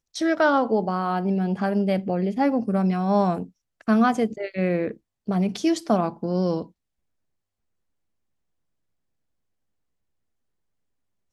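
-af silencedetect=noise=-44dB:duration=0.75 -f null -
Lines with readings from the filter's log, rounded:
silence_start: 6.68
silence_end: 11.32 | silence_duration: 4.64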